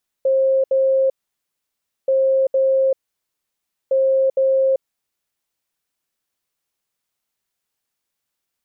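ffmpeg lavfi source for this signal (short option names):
-f lavfi -i "aevalsrc='0.224*sin(2*PI*533*t)*clip(min(mod(mod(t,1.83),0.46),0.39-mod(mod(t,1.83),0.46))/0.005,0,1)*lt(mod(t,1.83),0.92)':d=5.49:s=44100"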